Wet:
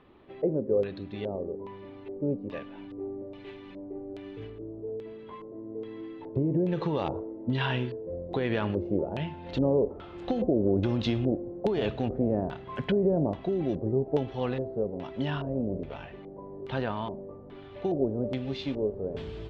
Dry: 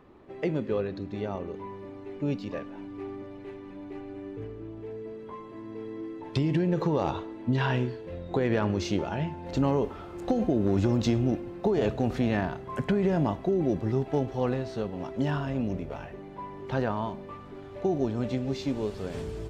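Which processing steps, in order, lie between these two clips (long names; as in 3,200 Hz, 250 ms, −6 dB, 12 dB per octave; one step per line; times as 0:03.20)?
auto-filter low-pass square 1.2 Hz 530–3,400 Hz
0:02.90–0:04.50: high-shelf EQ 3,900 Hz +11.5 dB
level −3 dB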